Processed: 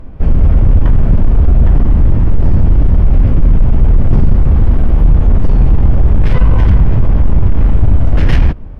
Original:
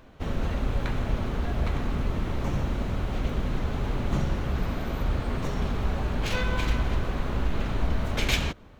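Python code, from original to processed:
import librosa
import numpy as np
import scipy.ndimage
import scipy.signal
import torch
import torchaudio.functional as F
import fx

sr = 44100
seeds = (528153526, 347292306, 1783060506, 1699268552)

y = fx.tilt_eq(x, sr, slope=-3.5)
y = fx.fold_sine(y, sr, drive_db=11, ceiling_db=3.0)
y = fx.formant_shift(y, sr, semitones=-4)
y = F.gain(torch.from_numpy(y), -5.0).numpy()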